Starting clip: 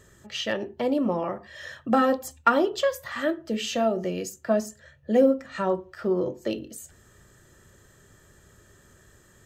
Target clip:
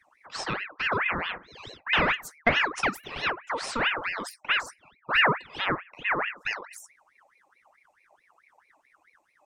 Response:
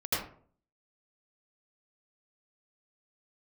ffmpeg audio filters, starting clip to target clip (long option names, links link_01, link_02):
-af "afftdn=noise_reduction=18:noise_floor=-46,aeval=exprs='val(0)*sin(2*PI*1500*n/s+1500*0.55/4.6*sin(2*PI*4.6*n/s))':channel_layout=same"